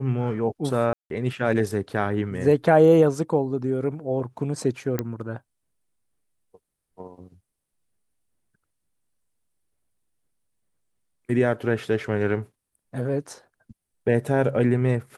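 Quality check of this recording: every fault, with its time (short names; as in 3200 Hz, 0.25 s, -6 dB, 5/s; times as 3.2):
0.93–1.1 gap 0.172 s
4.99 pop -11 dBFS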